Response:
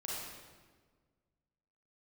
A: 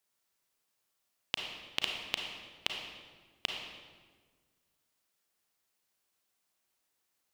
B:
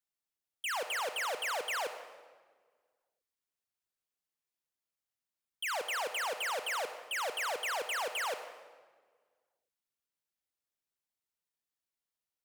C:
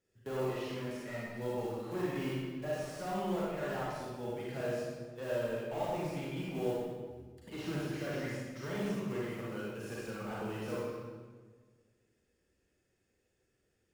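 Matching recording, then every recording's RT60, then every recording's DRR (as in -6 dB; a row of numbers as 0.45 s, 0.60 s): C; 1.5 s, 1.6 s, 1.5 s; 1.5 dB, 8.5 dB, -6.0 dB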